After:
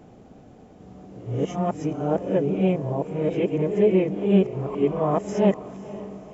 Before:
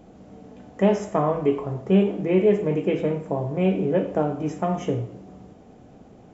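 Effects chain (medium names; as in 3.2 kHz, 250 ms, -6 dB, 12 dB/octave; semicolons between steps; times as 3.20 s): reverse the whole clip; dynamic bell 1.6 kHz, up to -4 dB, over -36 dBFS, Q 1; echo that smears into a reverb 502 ms, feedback 54%, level -16 dB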